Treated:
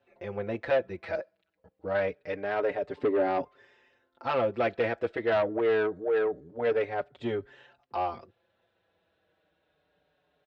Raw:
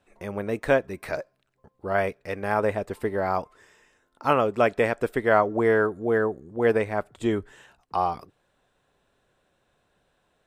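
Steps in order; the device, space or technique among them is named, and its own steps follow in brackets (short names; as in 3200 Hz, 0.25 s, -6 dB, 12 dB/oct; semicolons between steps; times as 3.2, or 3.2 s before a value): 2.97–3.41 bell 290 Hz +12.5 dB 1.4 oct; barber-pole flanger into a guitar amplifier (endless flanger 5.3 ms -0.26 Hz; soft clip -21 dBFS, distortion -12 dB; speaker cabinet 82–4400 Hz, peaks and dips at 130 Hz -3 dB, 210 Hz -5 dB, 560 Hz +4 dB, 1100 Hz -5 dB)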